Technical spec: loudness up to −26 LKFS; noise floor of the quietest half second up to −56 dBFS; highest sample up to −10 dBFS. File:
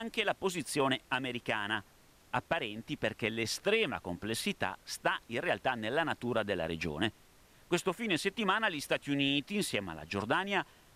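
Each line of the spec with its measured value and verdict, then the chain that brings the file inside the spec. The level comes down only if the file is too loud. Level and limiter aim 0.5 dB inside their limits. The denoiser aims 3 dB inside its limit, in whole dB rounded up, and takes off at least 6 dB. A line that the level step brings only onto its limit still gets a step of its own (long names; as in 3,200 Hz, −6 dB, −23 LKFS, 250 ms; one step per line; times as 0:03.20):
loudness −33.5 LKFS: in spec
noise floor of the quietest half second −62 dBFS: in spec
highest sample −17.0 dBFS: in spec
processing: no processing needed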